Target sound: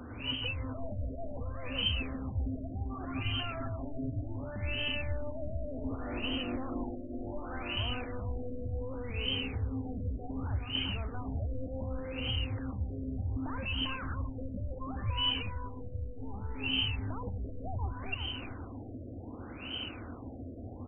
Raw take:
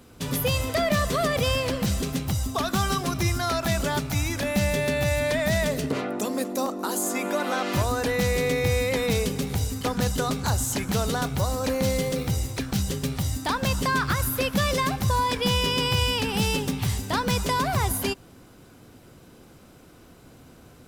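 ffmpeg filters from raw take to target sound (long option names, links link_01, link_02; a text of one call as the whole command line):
ffmpeg -i in.wav -filter_complex "[0:a]asplit=2[link_01][link_02];[link_02]highpass=frequency=720:poles=1,volume=33dB,asoftclip=type=tanh:threshold=-13dB[link_03];[link_01][link_03]amix=inputs=2:normalize=0,lowpass=frequency=1800:poles=1,volume=-6dB,firequalizer=gain_entry='entry(100,0);entry(150,-23);entry(250,-9);entry(390,-20);entry(2100,-18);entry(3000,11)':delay=0.05:min_phase=1,alimiter=limit=-18dB:level=0:latency=1:release=319,asettb=1/sr,asplit=3[link_04][link_05][link_06];[link_04]atrim=end=3.154[link_07];[link_05]atrim=start=3.15:end=4.29,asetpts=PTS-STARTPTS,afade=type=in:duration=0.004:curve=qsin,afade=type=out:start_time=1.136:duration=0.004:curve=qsin,aecho=1:1:7.4:0.66,atrim=end_sample=50274[link_08];[link_06]atrim=start=4.286[link_09];[link_07][link_08]acrossfade=duration=0.004:curve1=hsin:curve2=qsin[link_10];[link_10][link_09]acrossfade=duration=0.004:curve1=qsin:curve2=hsin,asplit=2[link_11][link_12];[link_12]aecho=0:1:390|780|1170|1560|1950:0.422|0.177|0.0744|0.0312|0.0131[link_13];[link_11][link_13]amix=inputs=2:normalize=0,afftfilt=real='re*lt(b*sr/1024,680*pow(3200/680,0.5+0.5*sin(2*PI*0.67*pts/sr)))':imag='im*lt(b*sr/1024,680*pow(3200/680,0.5+0.5*sin(2*PI*0.67*pts/sr)))':win_size=1024:overlap=0.75,volume=2dB" out.wav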